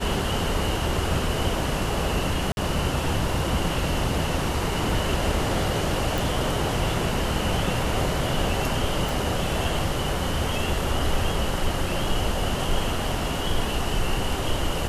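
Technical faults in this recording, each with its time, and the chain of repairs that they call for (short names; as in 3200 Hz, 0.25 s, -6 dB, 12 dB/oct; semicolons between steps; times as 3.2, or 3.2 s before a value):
2.52–2.57 gap 51 ms
6.18 pop
9.09 pop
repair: de-click; interpolate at 2.52, 51 ms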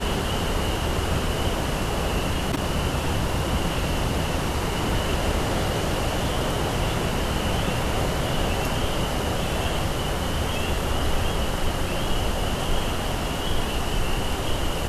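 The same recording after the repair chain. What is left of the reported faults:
none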